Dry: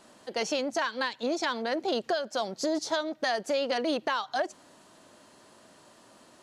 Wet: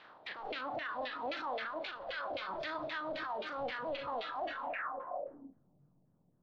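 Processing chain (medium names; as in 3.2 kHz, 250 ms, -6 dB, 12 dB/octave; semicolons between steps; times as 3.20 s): spectral contrast reduction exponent 0.21; peaking EQ 2.3 kHz -8.5 dB 0.9 oct; overdrive pedal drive 14 dB, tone 3.3 kHz, clips at -12.5 dBFS; in parallel at -5 dB: saturation -25.5 dBFS, distortion -13 dB; on the sum: echo that smears into a reverb 454 ms, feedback 49%, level -13 dB; LFO low-pass saw down 3.8 Hz 570–2300 Hz; reverberation RT60 0.45 s, pre-delay 6 ms, DRR 11.5 dB; low-pass sweep 3.9 kHz -> 160 Hz, 4.60–5.60 s; peak limiter -33 dBFS, peak gain reduction 22.5 dB; spectral noise reduction 12 dB; trim +3.5 dB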